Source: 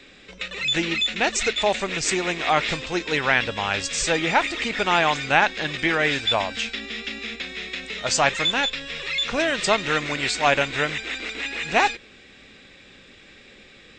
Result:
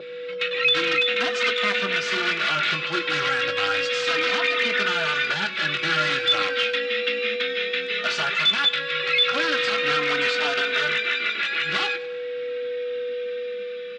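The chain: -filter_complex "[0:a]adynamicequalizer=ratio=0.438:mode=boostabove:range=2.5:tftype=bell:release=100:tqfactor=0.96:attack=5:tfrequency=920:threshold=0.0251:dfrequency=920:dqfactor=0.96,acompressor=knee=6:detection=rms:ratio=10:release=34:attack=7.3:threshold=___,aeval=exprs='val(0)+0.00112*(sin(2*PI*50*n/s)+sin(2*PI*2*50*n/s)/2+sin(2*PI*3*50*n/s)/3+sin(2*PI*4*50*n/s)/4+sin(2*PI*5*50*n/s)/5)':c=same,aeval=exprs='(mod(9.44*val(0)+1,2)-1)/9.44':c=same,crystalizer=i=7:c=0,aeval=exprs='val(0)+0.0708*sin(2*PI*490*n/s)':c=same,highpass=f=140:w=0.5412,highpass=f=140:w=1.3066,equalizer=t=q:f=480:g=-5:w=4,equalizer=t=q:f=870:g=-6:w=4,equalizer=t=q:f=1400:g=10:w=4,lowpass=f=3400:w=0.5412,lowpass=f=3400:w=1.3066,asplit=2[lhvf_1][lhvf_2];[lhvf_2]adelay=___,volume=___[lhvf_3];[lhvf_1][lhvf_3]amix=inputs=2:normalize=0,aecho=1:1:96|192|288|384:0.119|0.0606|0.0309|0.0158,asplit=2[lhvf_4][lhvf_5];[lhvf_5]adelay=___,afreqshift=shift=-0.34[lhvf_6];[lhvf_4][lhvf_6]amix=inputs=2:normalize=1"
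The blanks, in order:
-23dB, 20, -10.5dB, 3.1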